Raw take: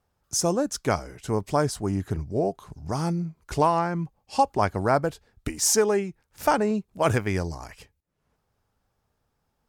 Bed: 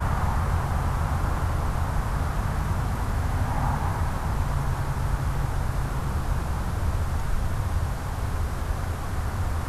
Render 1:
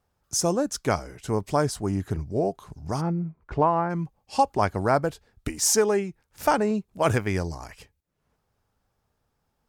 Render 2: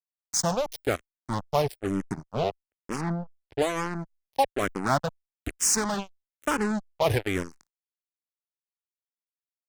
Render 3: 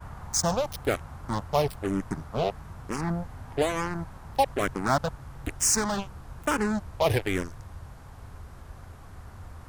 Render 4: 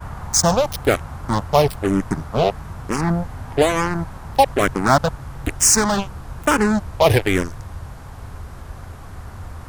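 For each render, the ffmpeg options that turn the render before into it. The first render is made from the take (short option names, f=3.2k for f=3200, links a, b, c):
-filter_complex "[0:a]asplit=3[a][b][c];[a]afade=t=out:st=3:d=0.02[d];[b]lowpass=1.7k,afade=t=in:st=3:d=0.02,afade=t=out:st=3.89:d=0.02[e];[c]afade=t=in:st=3.89:d=0.02[f];[d][e][f]amix=inputs=3:normalize=0"
-filter_complex "[0:a]acrusher=bits=3:mix=0:aa=0.5,asplit=2[a][b];[b]afreqshift=-1.1[c];[a][c]amix=inputs=2:normalize=1"
-filter_complex "[1:a]volume=-16.5dB[a];[0:a][a]amix=inputs=2:normalize=0"
-af "volume=9.5dB,alimiter=limit=-2dB:level=0:latency=1"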